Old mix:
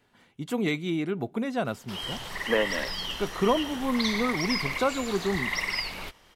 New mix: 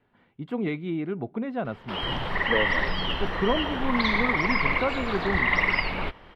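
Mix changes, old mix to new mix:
background +11.5 dB
master: add high-frequency loss of the air 450 metres

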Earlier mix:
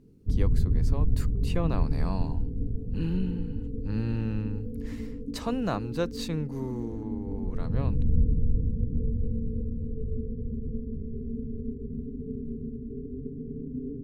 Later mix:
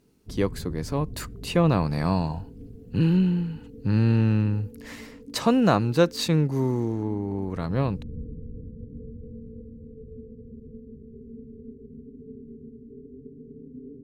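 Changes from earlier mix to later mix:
speech +9.5 dB
background: add spectral tilt +3.5 dB per octave

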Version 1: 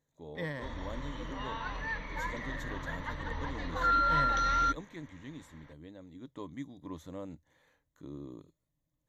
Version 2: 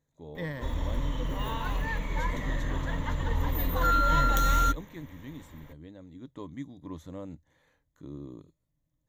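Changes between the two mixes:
background: remove Chebyshev low-pass with heavy ripple 6,100 Hz, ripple 6 dB
master: add low-shelf EQ 210 Hz +6 dB

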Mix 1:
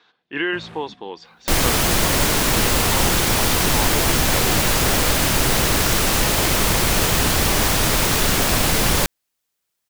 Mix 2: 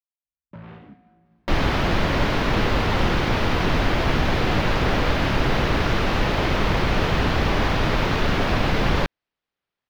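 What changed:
speech: muted
master: add high-frequency loss of the air 290 metres

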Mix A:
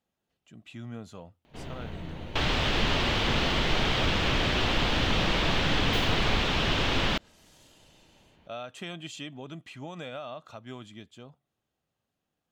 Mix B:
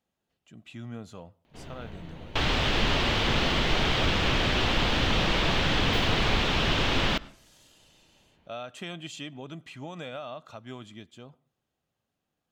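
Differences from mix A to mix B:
first sound −4.5 dB
reverb: on, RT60 0.50 s

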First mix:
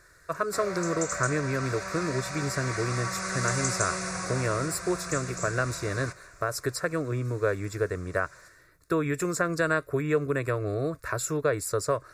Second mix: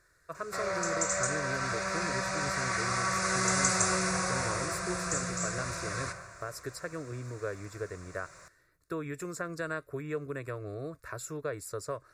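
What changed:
speech −10.0 dB
background: send +11.0 dB

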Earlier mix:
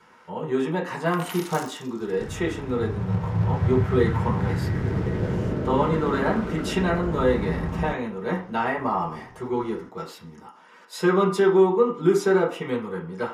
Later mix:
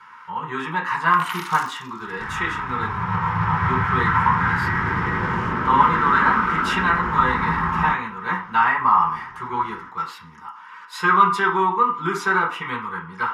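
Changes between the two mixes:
second sound: send +10.0 dB
master: add drawn EQ curve 100 Hz 0 dB, 640 Hz −13 dB, 1,000 Hz +14 dB, 7,300 Hz −2 dB

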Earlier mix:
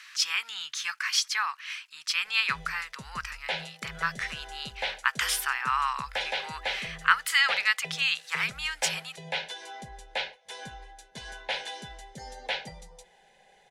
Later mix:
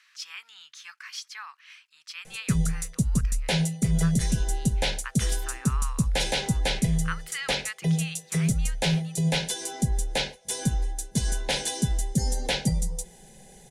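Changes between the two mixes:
speech −12.0 dB
background: remove three-way crossover with the lows and the highs turned down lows −23 dB, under 590 Hz, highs −24 dB, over 3,700 Hz

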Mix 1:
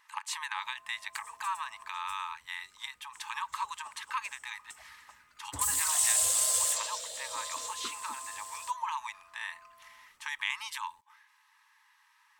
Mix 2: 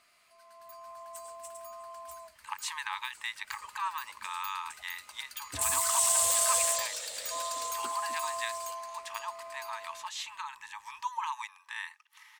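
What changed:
speech: entry +2.35 s
first sound: remove four-pole ladder band-pass 1,500 Hz, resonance 45%

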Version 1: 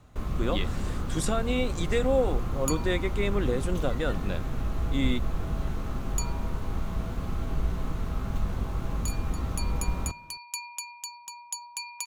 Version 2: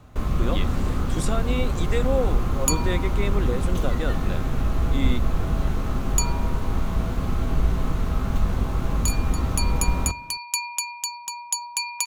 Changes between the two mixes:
first sound +6.0 dB
second sound +9.5 dB
reverb: on, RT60 0.45 s

